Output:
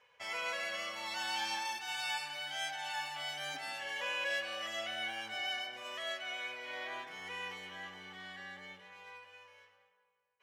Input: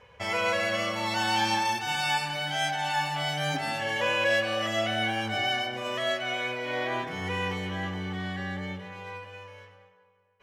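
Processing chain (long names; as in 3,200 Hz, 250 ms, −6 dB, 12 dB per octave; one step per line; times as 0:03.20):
high-pass filter 1,300 Hz 6 dB per octave
level −7.5 dB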